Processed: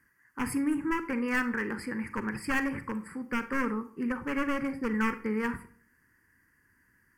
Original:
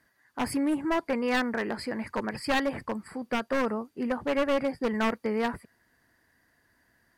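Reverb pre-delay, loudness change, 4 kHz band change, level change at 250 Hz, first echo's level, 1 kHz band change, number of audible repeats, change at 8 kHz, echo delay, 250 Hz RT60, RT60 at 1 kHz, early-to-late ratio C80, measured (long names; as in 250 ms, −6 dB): 34 ms, −2.0 dB, −9.5 dB, −0.5 dB, no echo audible, −3.5 dB, no echo audible, −1.0 dB, no echo audible, 0.50 s, 0.45 s, 17.5 dB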